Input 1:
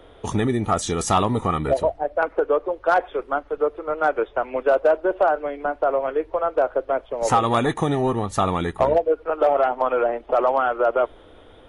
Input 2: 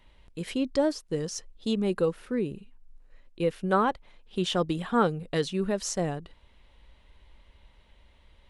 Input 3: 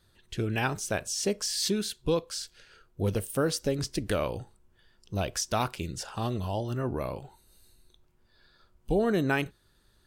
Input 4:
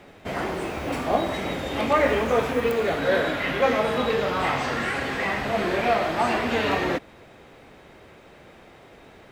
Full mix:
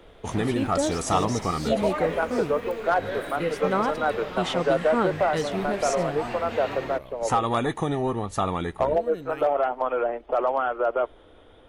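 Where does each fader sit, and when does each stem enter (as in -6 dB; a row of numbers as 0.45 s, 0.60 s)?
-4.5 dB, -1.0 dB, -12.5 dB, -10.5 dB; 0.00 s, 0.00 s, 0.00 s, 0.00 s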